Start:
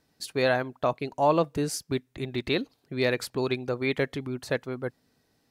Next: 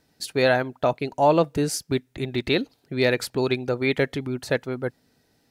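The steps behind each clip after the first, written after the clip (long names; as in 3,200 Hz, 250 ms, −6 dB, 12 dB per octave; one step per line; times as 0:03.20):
notch filter 1,100 Hz, Q 8.5
level +4.5 dB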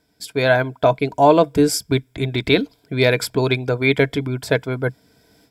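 EQ curve with evenly spaced ripples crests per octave 1.7, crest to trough 9 dB
automatic gain control gain up to 14 dB
level −1 dB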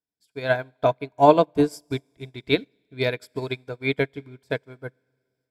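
four-comb reverb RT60 2.4 s, combs from 30 ms, DRR 16 dB
expander for the loud parts 2.5 to 1, over −30 dBFS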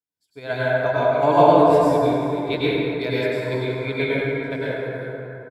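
single-tap delay 392 ms −16 dB
dense smooth reverb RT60 3 s, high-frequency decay 0.4×, pre-delay 85 ms, DRR −9.5 dB
level −6 dB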